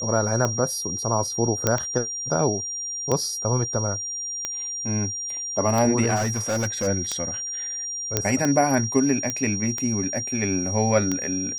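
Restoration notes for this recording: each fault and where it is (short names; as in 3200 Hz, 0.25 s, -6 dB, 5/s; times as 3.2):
tick 45 rpm -11 dBFS
tone 5700 Hz -28 dBFS
1.67 pop -5 dBFS
6.15–6.88 clipped -20 dBFS
8.17 pop -4 dBFS
9.3 pop -11 dBFS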